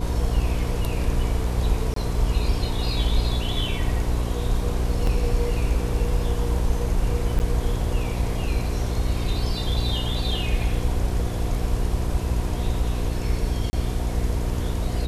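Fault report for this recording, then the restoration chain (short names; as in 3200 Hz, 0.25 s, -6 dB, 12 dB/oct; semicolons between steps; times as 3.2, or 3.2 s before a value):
hum 60 Hz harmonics 7 -27 dBFS
1.94–1.96 gap 23 ms
5.07 gap 2.5 ms
7.39–7.4 gap 9.6 ms
13.7–13.73 gap 30 ms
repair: de-hum 60 Hz, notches 7; interpolate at 1.94, 23 ms; interpolate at 5.07, 2.5 ms; interpolate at 7.39, 9.6 ms; interpolate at 13.7, 30 ms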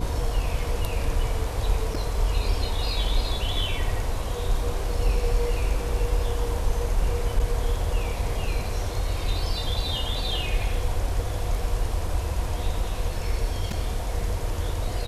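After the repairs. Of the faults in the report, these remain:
none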